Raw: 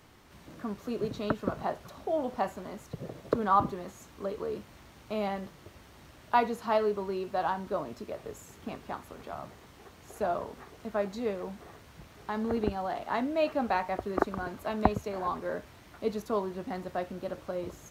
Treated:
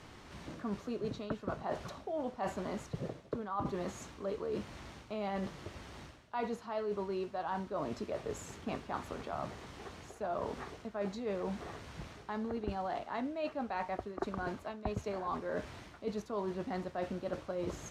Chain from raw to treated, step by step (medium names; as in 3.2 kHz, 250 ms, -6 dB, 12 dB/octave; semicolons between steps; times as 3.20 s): low-pass 7.8 kHz 12 dB/octave; reverse; compression 16:1, threshold -38 dBFS, peak gain reduction 22.5 dB; reverse; trim +4.5 dB